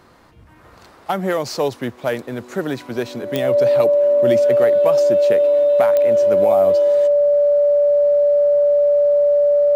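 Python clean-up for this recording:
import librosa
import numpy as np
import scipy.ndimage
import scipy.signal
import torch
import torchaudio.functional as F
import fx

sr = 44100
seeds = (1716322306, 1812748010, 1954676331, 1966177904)

y = fx.fix_declick_ar(x, sr, threshold=10.0)
y = fx.notch(y, sr, hz=580.0, q=30.0)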